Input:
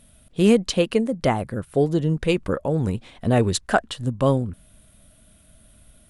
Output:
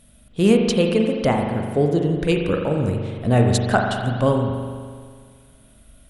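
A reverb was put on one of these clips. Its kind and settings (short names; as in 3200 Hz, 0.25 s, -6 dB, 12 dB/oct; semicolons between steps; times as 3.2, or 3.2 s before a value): spring tank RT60 1.9 s, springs 41 ms, chirp 50 ms, DRR 2 dB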